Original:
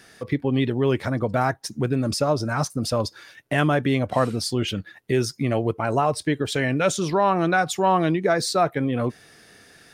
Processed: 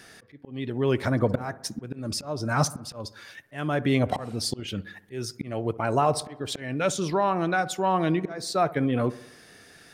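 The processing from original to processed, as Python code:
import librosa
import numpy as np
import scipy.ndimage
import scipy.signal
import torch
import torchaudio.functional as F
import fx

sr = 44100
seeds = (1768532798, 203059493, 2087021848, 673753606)

y = fx.auto_swell(x, sr, attack_ms=593.0)
y = fx.echo_wet_lowpass(y, sr, ms=64, feedback_pct=57, hz=1600.0, wet_db=-17.5)
y = fx.rider(y, sr, range_db=5, speed_s=0.5)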